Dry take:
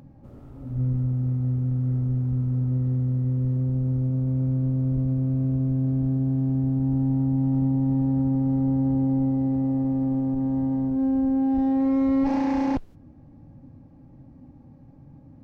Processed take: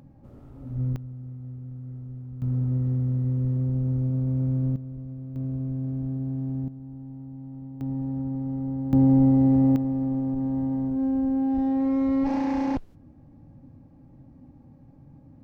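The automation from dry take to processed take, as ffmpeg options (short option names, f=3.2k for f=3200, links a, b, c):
-af "asetnsamples=n=441:p=0,asendcmd='0.96 volume volume -13.5dB;2.42 volume volume -1dB;4.76 volume volume -13dB;5.36 volume volume -6dB;6.68 volume volume -17dB;7.81 volume volume -7dB;8.93 volume volume 5dB;9.76 volume volume -2dB',volume=-2.5dB"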